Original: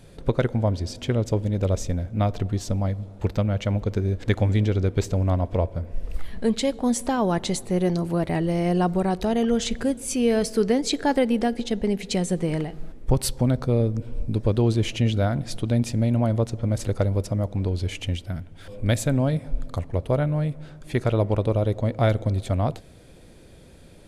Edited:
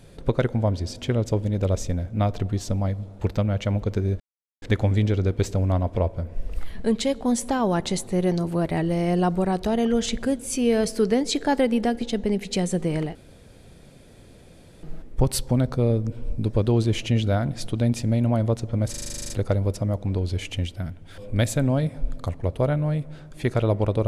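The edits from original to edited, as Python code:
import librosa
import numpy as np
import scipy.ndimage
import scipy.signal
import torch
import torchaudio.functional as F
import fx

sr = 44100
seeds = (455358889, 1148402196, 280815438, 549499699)

y = fx.edit(x, sr, fx.insert_silence(at_s=4.2, length_s=0.42),
    fx.insert_room_tone(at_s=12.73, length_s=1.68),
    fx.stutter(start_s=16.8, slice_s=0.04, count=11), tone=tone)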